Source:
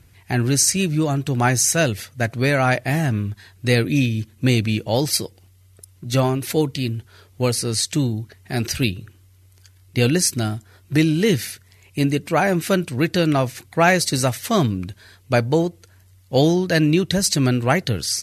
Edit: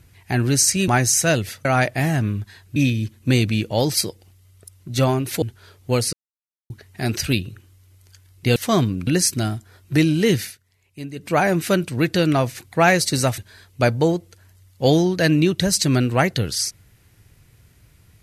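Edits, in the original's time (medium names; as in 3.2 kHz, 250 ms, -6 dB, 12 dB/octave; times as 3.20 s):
0.88–1.39 s: delete
2.16–2.55 s: delete
3.66–3.92 s: delete
6.58–6.93 s: delete
7.64–8.21 s: mute
11.41–12.31 s: dip -13.5 dB, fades 0.16 s
14.38–14.89 s: move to 10.07 s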